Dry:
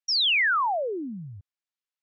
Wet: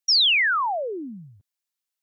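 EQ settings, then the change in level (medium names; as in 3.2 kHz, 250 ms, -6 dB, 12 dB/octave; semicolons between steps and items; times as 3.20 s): high-pass 180 Hz; treble shelf 4.3 kHz +11 dB; 0.0 dB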